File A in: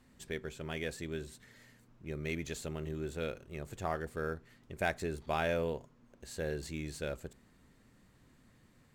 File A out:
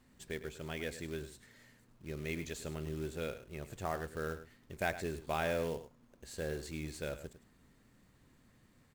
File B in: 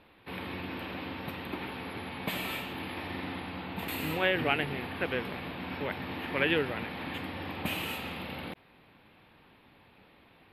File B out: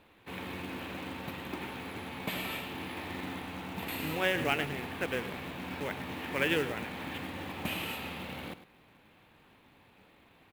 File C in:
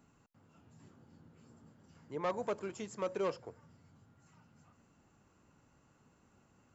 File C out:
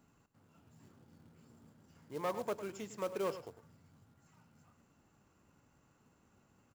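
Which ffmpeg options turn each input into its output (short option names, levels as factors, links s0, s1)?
-af "acrusher=bits=4:mode=log:mix=0:aa=0.000001,aecho=1:1:103:0.224,volume=0.794"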